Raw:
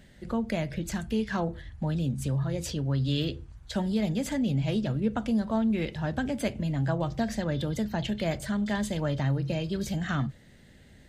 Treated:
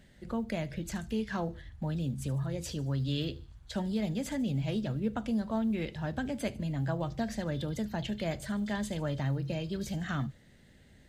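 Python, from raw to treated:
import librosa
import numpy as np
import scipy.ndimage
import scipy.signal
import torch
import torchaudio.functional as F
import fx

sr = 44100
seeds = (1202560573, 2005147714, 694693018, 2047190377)

p1 = x + fx.echo_wet_highpass(x, sr, ms=75, feedback_pct=49, hz=4500.0, wet_db=-16, dry=0)
p2 = fx.quant_float(p1, sr, bits=6)
y = p2 * librosa.db_to_amplitude(-4.5)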